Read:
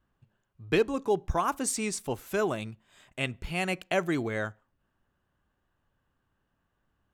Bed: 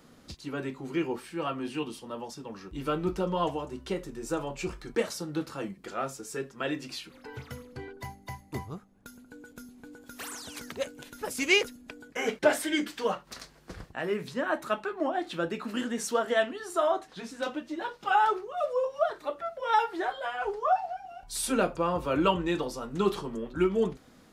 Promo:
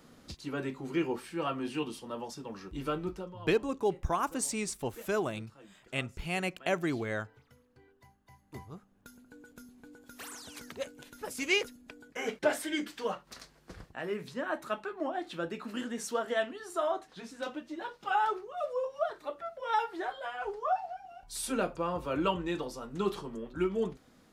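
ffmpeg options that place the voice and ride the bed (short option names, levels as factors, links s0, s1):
-filter_complex "[0:a]adelay=2750,volume=0.708[s0];[1:a]volume=5.01,afade=t=out:st=2.74:d=0.62:silence=0.112202,afade=t=in:st=8.28:d=0.57:silence=0.177828[s1];[s0][s1]amix=inputs=2:normalize=0"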